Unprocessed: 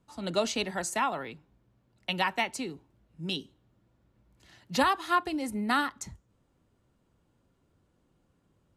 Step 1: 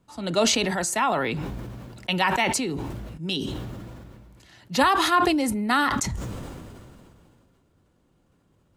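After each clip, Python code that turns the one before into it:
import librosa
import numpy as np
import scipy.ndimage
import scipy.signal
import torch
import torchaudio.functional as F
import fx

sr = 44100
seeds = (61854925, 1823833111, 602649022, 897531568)

y = fx.sustainer(x, sr, db_per_s=24.0)
y = y * 10.0 ** (4.5 / 20.0)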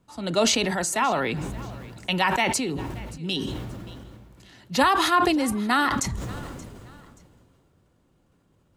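y = fx.echo_feedback(x, sr, ms=578, feedback_pct=31, wet_db=-20.5)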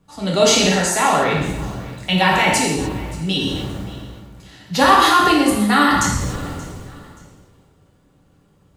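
y = fx.rev_gated(x, sr, seeds[0], gate_ms=320, shape='falling', drr_db=-3.5)
y = y * 10.0 ** (2.5 / 20.0)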